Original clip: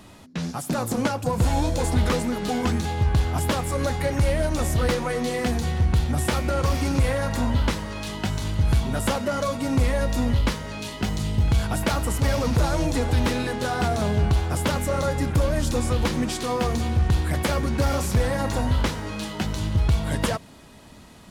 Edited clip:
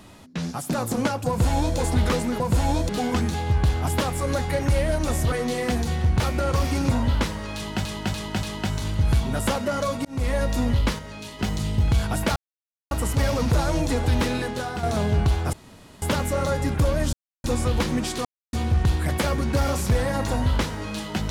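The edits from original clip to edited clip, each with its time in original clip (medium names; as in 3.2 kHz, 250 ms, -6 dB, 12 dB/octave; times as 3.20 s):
1.28–1.77 s: copy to 2.40 s
4.83–5.08 s: delete
5.96–6.30 s: delete
7.01–7.38 s: delete
8.03–8.32 s: loop, 4 plays
9.65–9.94 s: fade in
10.59–10.99 s: gain -4.5 dB
11.96 s: insert silence 0.55 s
13.45–13.88 s: fade out, to -8.5 dB
14.58 s: insert room tone 0.49 s
15.69 s: insert silence 0.31 s
16.50–16.78 s: mute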